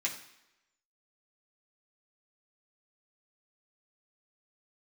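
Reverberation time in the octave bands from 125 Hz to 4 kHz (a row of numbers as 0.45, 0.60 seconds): 0.65, 0.80, 0.90, 0.90, 0.90, 0.85 seconds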